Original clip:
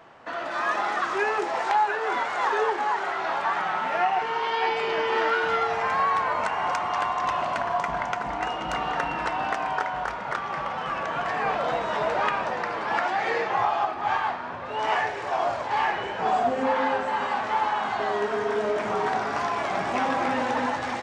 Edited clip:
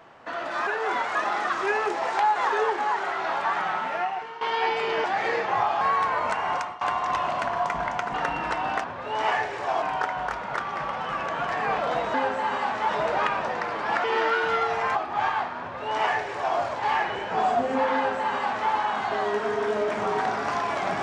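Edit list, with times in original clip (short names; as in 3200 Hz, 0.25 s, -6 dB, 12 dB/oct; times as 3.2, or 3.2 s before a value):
1.88–2.36 move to 0.67
3.7–4.41 fade out, to -14.5 dB
5.04–5.95 swap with 13.06–13.83
6.67–6.95 fade out, to -22 dB
8.28–8.89 cut
14.48–15.46 copy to 9.59
16.83–17.58 copy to 11.91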